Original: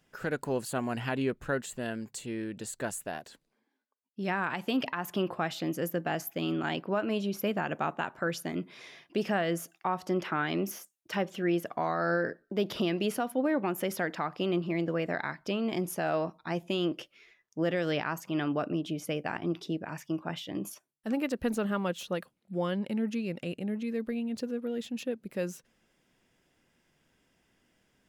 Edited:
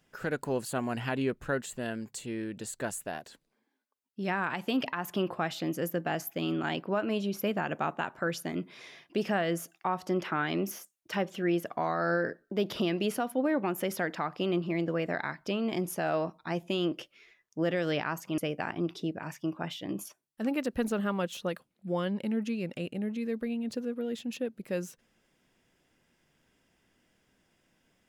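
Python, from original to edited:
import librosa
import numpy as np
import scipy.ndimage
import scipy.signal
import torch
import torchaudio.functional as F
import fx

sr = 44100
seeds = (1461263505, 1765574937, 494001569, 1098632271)

y = fx.edit(x, sr, fx.cut(start_s=18.38, length_s=0.66), tone=tone)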